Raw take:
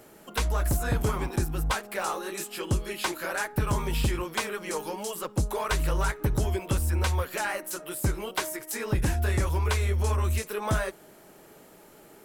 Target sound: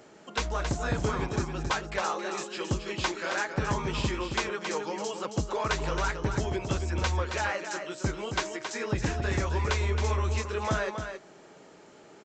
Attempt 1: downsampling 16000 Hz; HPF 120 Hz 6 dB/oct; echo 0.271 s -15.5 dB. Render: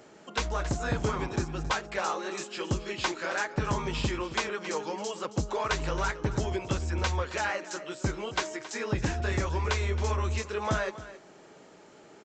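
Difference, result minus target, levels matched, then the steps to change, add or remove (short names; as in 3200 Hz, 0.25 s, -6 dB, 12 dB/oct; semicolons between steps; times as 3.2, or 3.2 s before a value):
echo-to-direct -8 dB
change: echo 0.271 s -7.5 dB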